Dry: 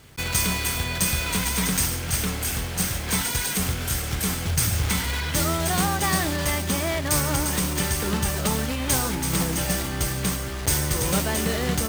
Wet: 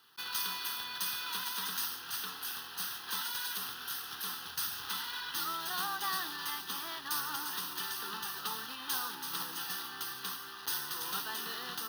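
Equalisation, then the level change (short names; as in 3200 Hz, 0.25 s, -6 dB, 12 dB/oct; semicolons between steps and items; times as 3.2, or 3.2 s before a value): HPF 620 Hz 12 dB/oct; fixed phaser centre 2200 Hz, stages 6; -6.5 dB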